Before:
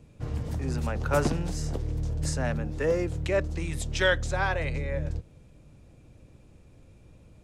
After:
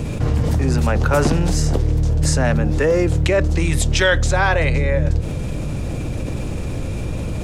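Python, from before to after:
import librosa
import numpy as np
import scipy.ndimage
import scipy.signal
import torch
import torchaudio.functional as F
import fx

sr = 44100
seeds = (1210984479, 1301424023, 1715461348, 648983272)

y = fx.env_flatten(x, sr, amount_pct=70)
y = F.gain(torch.from_numpy(y), 6.5).numpy()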